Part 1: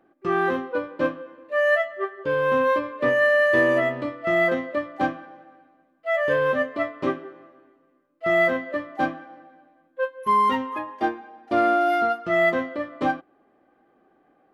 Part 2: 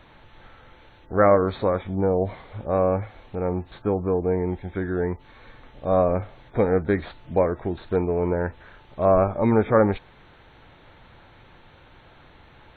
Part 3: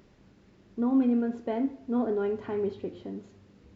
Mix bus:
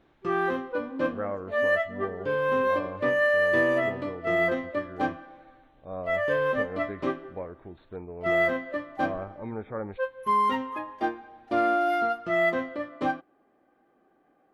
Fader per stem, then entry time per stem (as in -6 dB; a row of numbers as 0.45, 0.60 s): -4.0, -16.5, -14.5 dB; 0.00, 0.00, 0.00 s